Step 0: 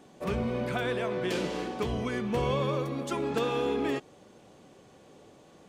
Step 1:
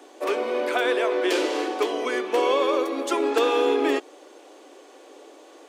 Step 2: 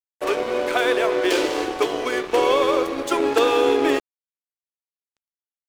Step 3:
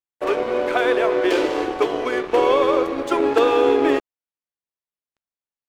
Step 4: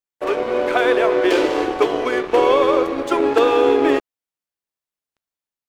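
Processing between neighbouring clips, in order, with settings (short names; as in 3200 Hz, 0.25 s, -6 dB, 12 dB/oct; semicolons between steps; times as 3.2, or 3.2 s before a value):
steep high-pass 280 Hz 72 dB/oct; gain +8.5 dB
crossover distortion -35.5 dBFS; gain +4.5 dB
high shelf 3600 Hz -12 dB; gain +2 dB
AGC gain up to 3.5 dB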